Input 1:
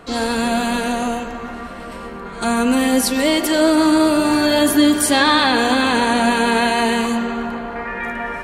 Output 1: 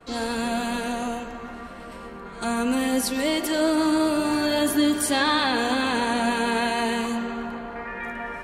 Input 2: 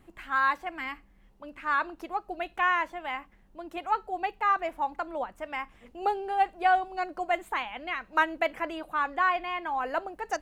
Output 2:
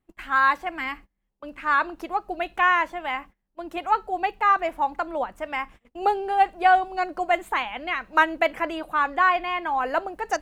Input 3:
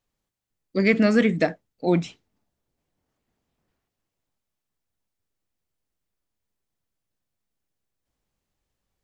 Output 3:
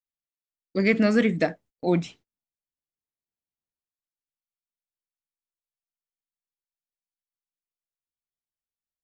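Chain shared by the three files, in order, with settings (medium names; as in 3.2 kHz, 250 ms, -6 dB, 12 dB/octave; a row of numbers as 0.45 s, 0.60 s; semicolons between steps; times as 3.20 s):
gate -48 dBFS, range -25 dB; normalise loudness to -24 LUFS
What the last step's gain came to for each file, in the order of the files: -7.5 dB, +5.5 dB, -2.0 dB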